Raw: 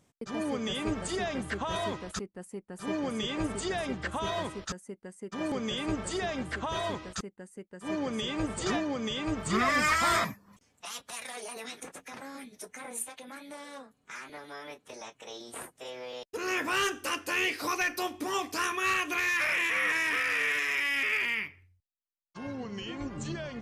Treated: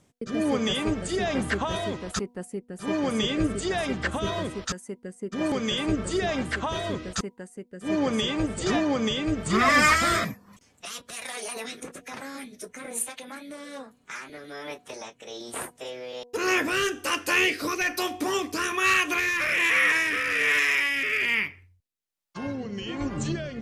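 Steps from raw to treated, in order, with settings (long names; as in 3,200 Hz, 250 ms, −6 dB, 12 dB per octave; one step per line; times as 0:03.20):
hum removal 242.7 Hz, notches 4
rotating-speaker cabinet horn 1.2 Hz
level +8 dB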